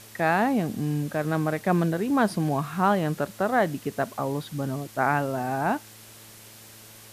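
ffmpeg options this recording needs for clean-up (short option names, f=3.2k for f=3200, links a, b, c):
-af "bandreject=f=110.1:t=h:w=4,bandreject=f=220.2:t=h:w=4,bandreject=f=330.3:t=h:w=4,bandreject=f=440.4:t=h:w=4,bandreject=f=550.5:t=h:w=4,afftdn=nr=23:nf=-48"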